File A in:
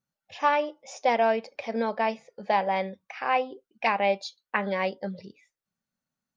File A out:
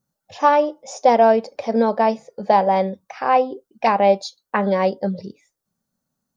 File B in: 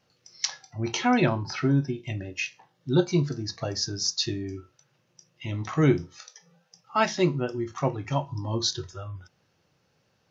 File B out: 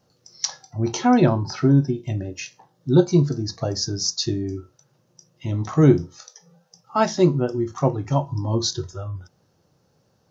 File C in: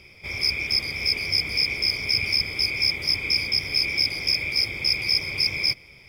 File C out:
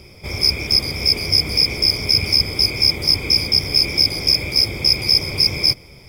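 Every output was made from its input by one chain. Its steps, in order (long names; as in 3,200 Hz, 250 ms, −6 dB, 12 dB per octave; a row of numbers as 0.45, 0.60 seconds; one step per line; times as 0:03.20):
parametric band 2,400 Hz −13 dB 1.5 octaves
normalise the peak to −3 dBFS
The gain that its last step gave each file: +11.0, +7.0, +11.5 decibels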